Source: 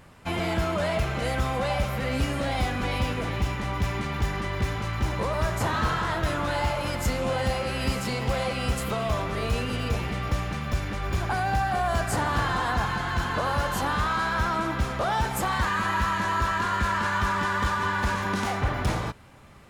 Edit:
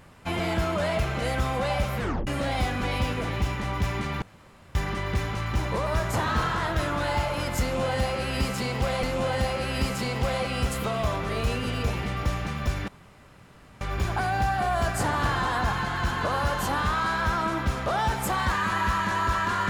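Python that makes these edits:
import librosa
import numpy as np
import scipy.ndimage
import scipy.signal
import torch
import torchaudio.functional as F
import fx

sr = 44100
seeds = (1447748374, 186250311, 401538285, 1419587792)

y = fx.edit(x, sr, fx.tape_stop(start_s=1.99, length_s=0.28),
    fx.insert_room_tone(at_s=4.22, length_s=0.53),
    fx.repeat(start_s=7.09, length_s=1.41, count=2),
    fx.insert_room_tone(at_s=10.94, length_s=0.93), tone=tone)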